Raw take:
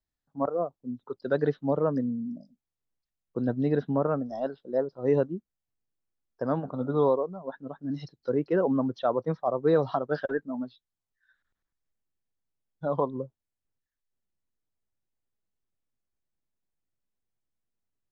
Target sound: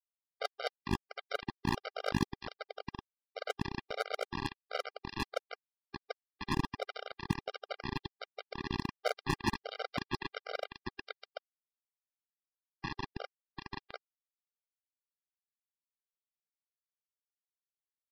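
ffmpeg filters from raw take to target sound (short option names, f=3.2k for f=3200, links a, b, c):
-filter_complex "[0:a]areverse,acompressor=threshold=-39dB:ratio=5,areverse,equalizer=f=1k:w=4.4:g=-8.5,asplit=4[a][b][c][d];[b]asetrate=33038,aresample=44100,atempo=1.33484,volume=-12dB[e];[c]asetrate=35002,aresample=44100,atempo=1.25992,volume=0dB[f];[d]asetrate=58866,aresample=44100,atempo=0.749154,volume=-14dB[g];[a][e][f][g]amix=inputs=4:normalize=0,highshelf=f=3.6k:g=10.5,aecho=1:1:739:0.631,acrossover=split=100|1000[h][i][j];[h]acompressor=threshold=-55dB:ratio=4[k];[i]acompressor=threshold=-41dB:ratio=4[l];[j]acompressor=threshold=-56dB:ratio=4[m];[k][l][m]amix=inputs=3:normalize=0,aecho=1:1:1.3:0.4,afftfilt=real='re*gte(hypot(re,im),0.00141)':imag='im*gte(hypot(re,im),0.00141)':win_size=1024:overlap=0.75,aresample=11025,acrusher=bits=5:mix=0:aa=0.000001,aresample=44100,agate=range=-7dB:threshold=-42dB:ratio=16:detection=peak,aeval=exprs='0.0316*(abs(mod(val(0)/0.0316+3,4)-2)-1)':c=same,afftfilt=real='re*gt(sin(2*PI*1.4*pts/sr)*(1-2*mod(floor(b*sr/1024/400),2)),0)':imag='im*gt(sin(2*PI*1.4*pts/sr)*(1-2*mod(floor(b*sr/1024/400),2)),0)':win_size=1024:overlap=0.75,volume=15dB"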